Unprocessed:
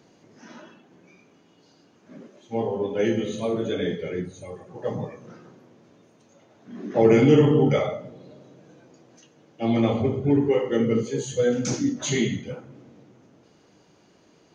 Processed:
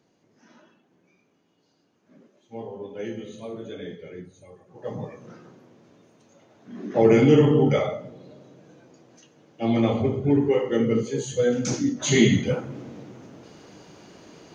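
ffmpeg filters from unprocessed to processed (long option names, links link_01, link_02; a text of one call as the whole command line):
ffmpeg -i in.wav -af "volume=10dB,afade=type=in:start_time=4.66:duration=0.56:silence=0.316228,afade=type=in:start_time=12.01:duration=0.41:silence=0.316228" out.wav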